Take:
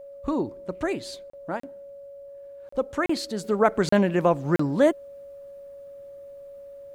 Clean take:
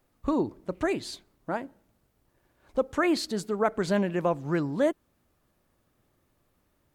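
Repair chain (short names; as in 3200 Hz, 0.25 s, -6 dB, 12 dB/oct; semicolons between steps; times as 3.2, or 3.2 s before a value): notch 560 Hz, Q 30; interpolate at 1.3/1.6/2.69/3.06/3.89/4.56, 34 ms; gain 0 dB, from 3.44 s -5.5 dB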